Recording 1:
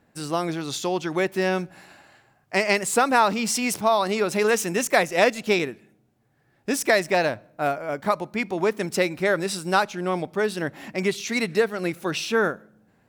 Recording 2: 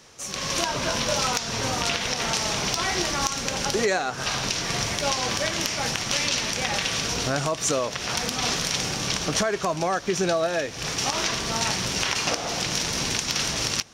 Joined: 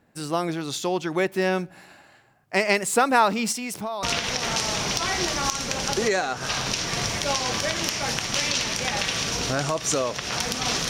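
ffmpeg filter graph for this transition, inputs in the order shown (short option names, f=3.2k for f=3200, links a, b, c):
-filter_complex "[0:a]asettb=1/sr,asplit=3[a][b][c];[a]atrim=end=3.524[d];[b]atrim=start=3.52:end=4.03,asetpts=PTS-STARTPTS,afade=t=in:d=0.004:c=qsin,afade=t=out:st=0.506:d=0.004:c=qsin,acompressor=threshold=-28dB:ratio=4:attack=3.2:release=140:knee=1:detection=peak[e];[c]atrim=start=4.026[f];[d][e]acrossfade=d=0.004:c1=hsin:c2=qsin[g];[g][f]acrossfade=d=0.004:c1=qsin:c2=hsin,apad=whole_dur=10.89,atrim=end=10.89,atrim=end=4.032[h];[1:a]atrim=start=1.798:end=8.66[i];[h][i]acrossfade=d=0.004:c1=hsin:c2=hsin"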